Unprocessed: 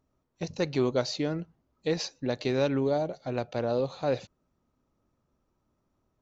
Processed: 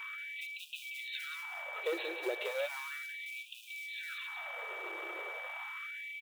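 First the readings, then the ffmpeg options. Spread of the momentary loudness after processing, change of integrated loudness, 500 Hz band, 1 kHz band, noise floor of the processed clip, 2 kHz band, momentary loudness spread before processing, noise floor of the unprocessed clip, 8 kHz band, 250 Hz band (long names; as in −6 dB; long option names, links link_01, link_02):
6 LU, −9.5 dB, −12.5 dB, −7.5 dB, −51 dBFS, +5.5 dB, 9 LU, −77 dBFS, can't be measured, −21.0 dB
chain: -filter_complex "[0:a]aeval=exprs='val(0)+0.5*0.015*sgn(val(0))':channel_layout=same,lowshelf=frequency=110:gain=-3.5,aresample=8000,asoftclip=type=hard:threshold=-24.5dB,aresample=44100,acrossover=split=330|3000[link_01][link_02][link_03];[link_02]acompressor=threshold=-38dB:ratio=4[link_04];[link_01][link_04][link_03]amix=inputs=3:normalize=0,acrusher=bits=6:mode=log:mix=0:aa=0.000001,asplit=2[link_05][link_06];[link_06]aecho=0:1:181:0.376[link_07];[link_05][link_07]amix=inputs=2:normalize=0,aeval=exprs='val(0)+0.00708*sin(2*PI*2300*n/s)':channel_layout=same,afftfilt=real='re*gte(b*sr/1024,310*pow(2400/310,0.5+0.5*sin(2*PI*0.35*pts/sr)))':imag='im*gte(b*sr/1024,310*pow(2400/310,0.5+0.5*sin(2*PI*0.35*pts/sr)))':win_size=1024:overlap=0.75,volume=1.5dB"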